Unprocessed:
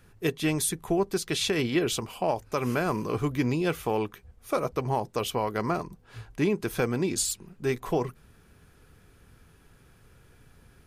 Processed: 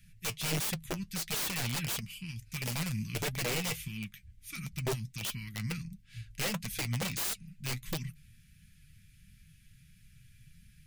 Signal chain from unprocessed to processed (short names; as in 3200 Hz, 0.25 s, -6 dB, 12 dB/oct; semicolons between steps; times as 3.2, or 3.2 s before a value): Chebyshev band-stop 180–2100 Hz, order 3; wrapped overs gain 28 dB; flange 1.5 Hz, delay 4.4 ms, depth 4.9 ms, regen +54%; gain +4 dB